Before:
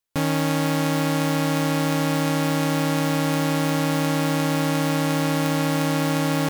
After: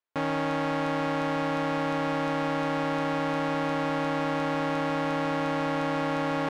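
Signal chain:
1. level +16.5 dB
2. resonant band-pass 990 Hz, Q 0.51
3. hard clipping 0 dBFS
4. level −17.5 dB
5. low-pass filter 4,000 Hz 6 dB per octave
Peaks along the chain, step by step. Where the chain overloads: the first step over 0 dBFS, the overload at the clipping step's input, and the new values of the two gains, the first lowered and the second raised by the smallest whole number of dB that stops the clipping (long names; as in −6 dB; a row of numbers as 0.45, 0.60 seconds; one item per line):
+2.5, +5.0, 0.0, −17.5, −17.5 dBFS
step 1, 5.0 dB
step 1 +11.5 dB, step 4 −12.5 dB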